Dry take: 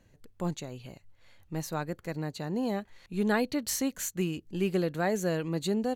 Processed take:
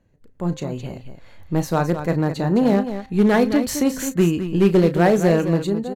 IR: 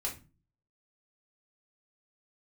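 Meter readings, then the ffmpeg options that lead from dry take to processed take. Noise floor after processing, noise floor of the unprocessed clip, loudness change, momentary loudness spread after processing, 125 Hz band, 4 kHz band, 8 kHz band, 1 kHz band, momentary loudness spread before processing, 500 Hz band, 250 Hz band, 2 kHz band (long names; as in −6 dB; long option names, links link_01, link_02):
−51 dBFS, −64 dBFS, +12.5 dB, 12 LU, +13.5 dB, +6.0 dB, +4.5 dB, +11.5 dB, 10 LU, +12.5 dB, +13.0 dB, +8.5 dB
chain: -filter_complex "[0:a]highshelf=frequency=2000:gain=-10.5,dynaudnorm=framelen=150:gausssize=7:maxgain=15dB,bandreject=frequency=261.3:width_type=h:width=4,bandreject=frequency=522.6:width_type=h:width=4,bandreject=frequency=783.9:width_type=h:width=4,bandreject=frequency=1045.2:width_type=h:width=4,bandreject=frequency=1306.5:width_type=h:width=4,bandreject=frequency=1567.8:width_type=h:width=4,bandreject=frequency=1829.1:width_type=h:width=4,bandreject=frequency=2090.4:width_type=h:width=4,aeval=exprs='0.335*(cos(1*acos(clip(val(0)/0.335,-1,1)))-cos(1*PI/2))+0.0188*(cos(3*acos(clip(val(0)/0.335,-1,1)))-cos(3*PI/2))+0.0119*(cos(5*acos(clip(val(0)/0.335,-1,1)))-cos(5*PI/2))':channel_layout=same,asplit=2[link_01][link_02];[link_02]aecho=0:1:34.99|212.8:0.251|0.316[link_03];[link_01][link_03]amix=inputs=2:normalize=0"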